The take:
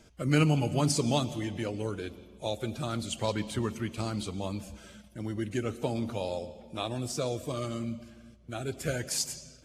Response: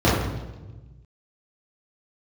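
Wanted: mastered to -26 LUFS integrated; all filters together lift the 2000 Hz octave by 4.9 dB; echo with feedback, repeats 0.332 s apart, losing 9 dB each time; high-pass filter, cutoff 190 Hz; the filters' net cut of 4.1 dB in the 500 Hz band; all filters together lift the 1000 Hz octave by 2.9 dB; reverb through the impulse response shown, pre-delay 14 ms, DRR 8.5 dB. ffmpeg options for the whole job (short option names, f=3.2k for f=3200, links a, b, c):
-filter_complex "[0:a]highpass=190,equalizer=f=500:t=o:g=-6.5,equalizer=f=1k:t=o:g=4.5,equalizer=f=2k:t=o:g=5.5,aecho=1:1:332|664|996|1328:0.355|0.124|0.0435|0.0152,asplit=2[a][b];[1:a]atrim=start_sample=2205,adelay=14[c];[b][c]afir=irnorm=-1:irlink=0,volume=-30dB[d];[a][d]amix=inputs=2:normalize=0,volume=5.5dB"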